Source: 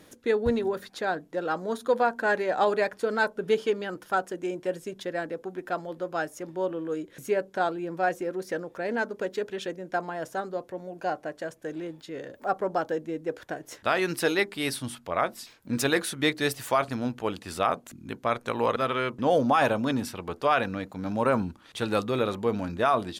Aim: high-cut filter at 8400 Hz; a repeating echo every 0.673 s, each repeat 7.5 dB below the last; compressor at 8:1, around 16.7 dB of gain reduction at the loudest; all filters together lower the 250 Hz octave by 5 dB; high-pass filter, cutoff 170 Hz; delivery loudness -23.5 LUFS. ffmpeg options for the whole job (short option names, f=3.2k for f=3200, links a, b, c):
-af "highpass=170,lowpass=8.4k,equalizer=f=250:t=o:g=-5.5,acompressor=threshold=-37dB:ratio=8,aecho=1:1:673|1346|2019|2692|3365:0.422|0.177|0.0744|0.0312|0.0131,volume=17.5dB"